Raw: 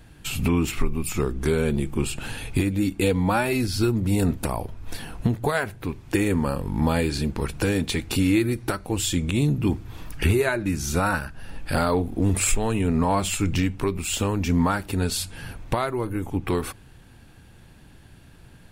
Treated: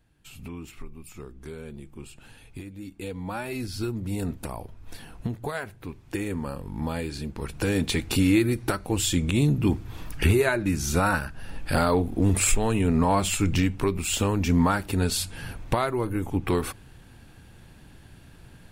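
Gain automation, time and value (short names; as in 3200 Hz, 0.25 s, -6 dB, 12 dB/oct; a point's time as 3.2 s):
2.77 s -17 dB
3.62 s -8 dB
7.33 s -8 dB
7.82 s 0 dB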